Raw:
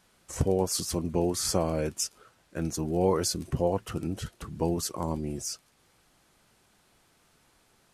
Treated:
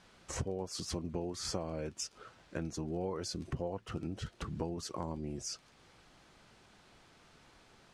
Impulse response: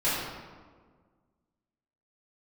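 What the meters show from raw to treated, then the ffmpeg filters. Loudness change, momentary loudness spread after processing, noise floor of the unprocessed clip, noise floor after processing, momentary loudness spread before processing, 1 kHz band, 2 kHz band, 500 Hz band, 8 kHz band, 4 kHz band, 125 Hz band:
-10.0 dB, 5 LU, -66 dBFS, -64 dBFS, 10 LU, -10.0 dB, -5.0 dB, -11.5 dB, -11.0 dB, -7.5 dB, -9.0 dB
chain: -af "lowpass=5600,acompressor=threshold=0.00891:ratio=4,volume=1.58"

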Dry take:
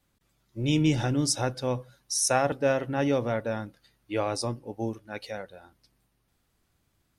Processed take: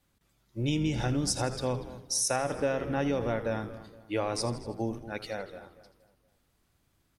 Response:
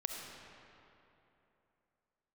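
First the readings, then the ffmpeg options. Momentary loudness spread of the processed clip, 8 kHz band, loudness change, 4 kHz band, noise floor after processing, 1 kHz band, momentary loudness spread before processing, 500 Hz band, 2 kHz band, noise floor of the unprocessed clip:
10 LU, -2.5 dB, -3.5 dB, -2.5 dB, -72 dBFS, -3.5 dB, 15 LU, -3.0 dB, -3.5 dB, -73 dBFS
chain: -filter_complex "[0:a]asplit=2[s0][s1];[s1]asplit=5[s2][s3][s4][s5][s6];[s2]adelay=81,afreqshift=-100,volume=0.2[s7];[s3]adelay=162,afreqshift=-200,volume=0.107[s8];[s4]adelay=243,afreqshift=-300,volume=0.0582[s9];[s5]adelay=324,afreqshift=-400,volume=0.0313[s10];[s6]adelay=405,afreqshift=-500,volume=0.017[s11];[s7][s8][s9][s10][s11]amix=inputs=5:normalize=0[s12];[s0][s12]amix=inputs=2:normalize=0,acompressor=threshold=0.0562:ratio=6,asplit=2[s13][s14];[s14]adelay=234,lowpass=f=2300:p=1,volume=0.178,asplit=2[s15][s16];[s16]adelay=234,lowpass=f=2300:p=1,volume=0.39,asplit=2[s17][s18];[s18]adelay=234,lowpass=f=2300:p=1,volume=0.39,asplit=2[s19][s20];[s20]adelay=234,lowpass=f=2300:p=1,volume=0.39[s21];[s15][s17][s19][s21]amix=inputs=4:normalize=0[s22];[s13][s22]amix=inputs=2:normalize=0"

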